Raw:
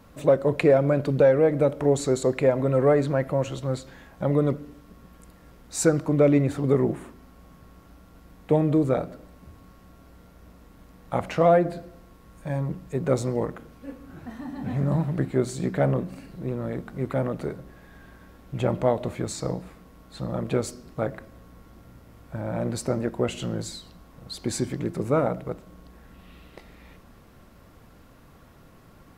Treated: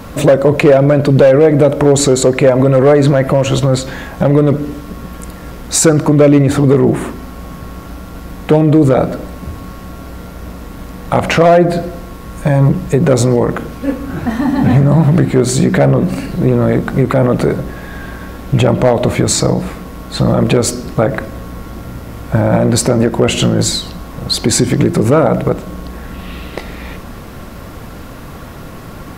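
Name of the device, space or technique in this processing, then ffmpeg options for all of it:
loud club master: -af "acompressor=threshold=-28dB:ratio=1.5,asoftclip=type=hard:threshold=-18dB,alimiter=level_in=23dB:limit=-1dB:release=50:level=0:latency=1,volume=-1dB"

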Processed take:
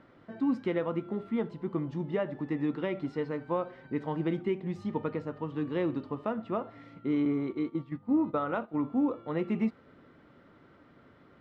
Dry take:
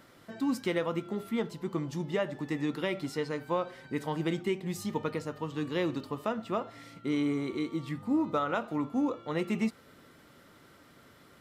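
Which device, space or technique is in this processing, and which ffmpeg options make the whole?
phone in a pocket: -filter_complex "[0:a]asettb=1/sr,asplit=3[a][b][c];[a]atrim=end=7.254[d];[b]atrim=start=7.25:end=8.8,asetpts=PTS-STARTPTS,afade=t=in:d=0.004:c=qsin,afade=t=out:st=1.546:d=0.004:c=qsin,agate=range=-11dB:threshold=-34dB:ratio=16:detection=peak[e];[c]atrim=start=8.796[f];[d][e]acrossfade=d=0.004:c1=hsin:c2=qsin[g];[g][f]acrossfade=d=0.004:c1=qsin:c2=hsin,lowpass=3.4k,equalizer=f=280:t=o:w=0.77:g=2,highshelf=f=2.5k:g=-10.5"

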